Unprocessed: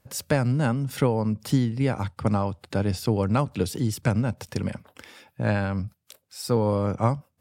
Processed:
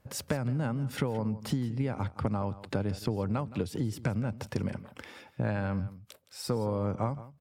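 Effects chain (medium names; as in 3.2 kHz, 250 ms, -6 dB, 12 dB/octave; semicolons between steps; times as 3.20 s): treble shelf 3.5 kHz -8.5 dB; compression, threshold -29 dBFS, peak gain reduction 12.5 dB; delay 168 ms -16.5 dB; trim +1.5 dB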